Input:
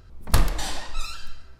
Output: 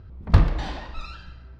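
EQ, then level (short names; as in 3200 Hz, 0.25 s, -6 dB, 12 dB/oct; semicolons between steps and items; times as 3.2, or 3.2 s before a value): HPF 54 Hz; air absorption 250 m; low shelf 250 Hz +9.5 dB; 0.0 dB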